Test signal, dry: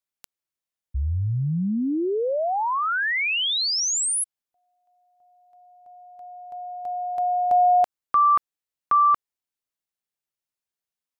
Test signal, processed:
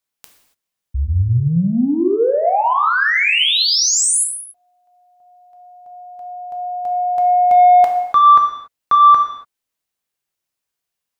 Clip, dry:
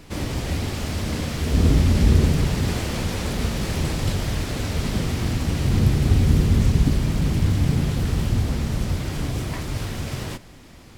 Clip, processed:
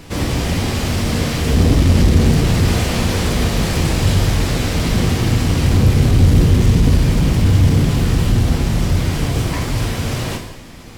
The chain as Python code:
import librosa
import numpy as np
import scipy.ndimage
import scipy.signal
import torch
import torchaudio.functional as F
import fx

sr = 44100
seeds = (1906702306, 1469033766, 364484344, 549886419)

y = 10.0 ** (-14.0 / 20.0) * np.tanh(x / 10.0 ** (-14.0 / 20.0))
y = fx.rev_gated(y, sr, seeds[0], gate_ms=310, shape='falling', drr_db=2.5)
y = y * librosa.db_to_amplitude(7.0)